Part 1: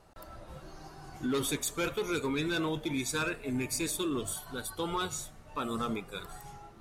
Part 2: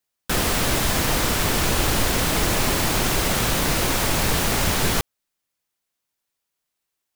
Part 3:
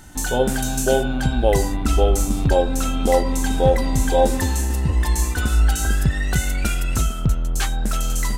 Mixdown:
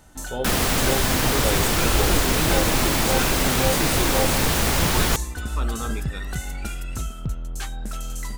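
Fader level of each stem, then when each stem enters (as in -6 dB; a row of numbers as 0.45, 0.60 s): +1.5, 0.0, -9.0 dB; 0.00, 0.15, 0.00 s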